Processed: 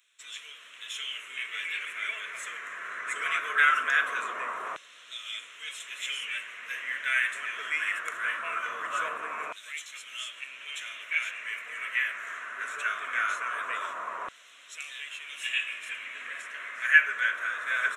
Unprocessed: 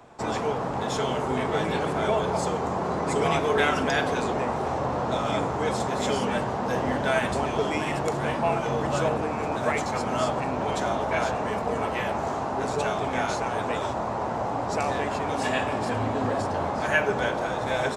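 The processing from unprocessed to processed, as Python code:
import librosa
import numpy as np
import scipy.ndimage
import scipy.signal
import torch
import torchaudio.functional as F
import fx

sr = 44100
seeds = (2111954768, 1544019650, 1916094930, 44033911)

y = fx.filter_lfo_highpass(x, sr, shape='saw_down', hz=0.21, low_hz=970.0, high_hz=3900.0, q=2.5)
y = fx.fixed_phaser(y, sr, hz=2000.0, stages=4)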